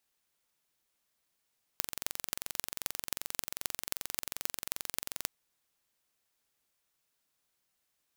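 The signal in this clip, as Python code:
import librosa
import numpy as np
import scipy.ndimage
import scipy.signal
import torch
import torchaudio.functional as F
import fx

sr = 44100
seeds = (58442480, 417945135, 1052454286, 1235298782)

y = fx.impulse_train(sr, length_s=3.46, per_s=22.6, accent_every=6, level_db=-3.0)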